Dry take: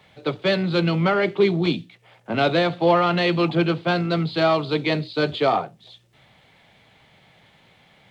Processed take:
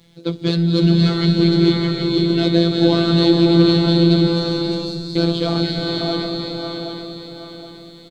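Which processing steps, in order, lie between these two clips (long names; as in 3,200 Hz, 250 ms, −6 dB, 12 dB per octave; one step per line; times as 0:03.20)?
feedback delay that plays each chunk backwards 386 ms, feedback 60%, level −4 dB
flat-topped bell 1,300 Hz −13.5 dB 2.7 octaves
in parallel at −5.5 dB: soft clipping −23 dBFS, distortion −9 dB
0:04.27–0:05.16: on the sum: elliptic band-stop filter 100–5,300 Hz
phases set to zero 169 Hz
on a send: single-tap delay 456 ms −17.5 dB
on the sum: slow-attack reverb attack 610 ms, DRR 1 dB
level +5 dB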